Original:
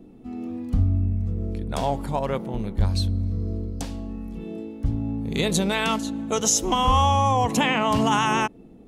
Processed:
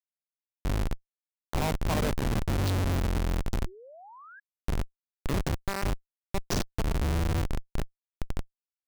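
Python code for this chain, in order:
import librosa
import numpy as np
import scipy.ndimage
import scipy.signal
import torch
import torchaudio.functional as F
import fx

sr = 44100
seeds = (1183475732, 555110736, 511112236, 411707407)

y = fx.doppler_pass(x, sr, speed_mps=42, closest_m=24.0, pass_at_s=2.79)
y = fx.schmitt(y, sr, flips_db=-29.5)
y = fx.spec_paint(y, sr, seeds[0], shape='rise', start_s=3.66, length_s=0.74, low_hz=340.0, high_hz=1700.0, level_db=-55.0)
y = y * librosa.db_to_amplitude(6.0)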